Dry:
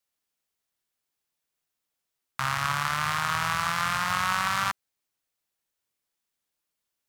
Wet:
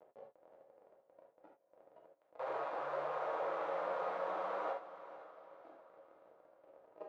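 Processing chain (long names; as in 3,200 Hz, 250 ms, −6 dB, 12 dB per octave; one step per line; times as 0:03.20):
wavefolder on the positive side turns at −24 dBFS
high-frequency loss of the air 160 metres
surface crackle 95 per second −54 dBFS
compressor whose output falls as the input rises −37 dBFS, ratio −1
comparator with hysteresis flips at −48.5 dBFS
noise reduction from a noise print of the clip's start 14 dB
bit reduction 11 bits
four-pole ladder band-pass 600 Hz, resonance 70%
feedback delay with all-pass diffusion 493 ms, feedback 44%, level −14 dB
reverb whose tail is shaped and stops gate 100 ms flat, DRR −1 dB
level +13.5 dB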